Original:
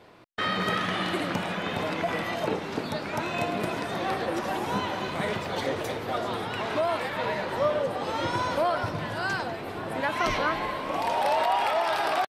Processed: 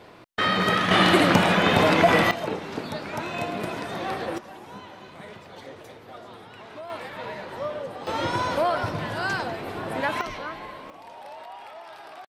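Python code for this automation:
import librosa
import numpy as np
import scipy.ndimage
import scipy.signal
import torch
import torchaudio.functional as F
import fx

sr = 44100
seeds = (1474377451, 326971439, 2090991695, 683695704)

y = fx.gain(x, sr, db=fx.steps((0.0, 5.0), (0.91, 11.0), (2.31, -1.0), (4.38, -13.0), (6.9, -6.0), (8.07, 2.0), (10.21, -8.0), (10.9, -17.0)))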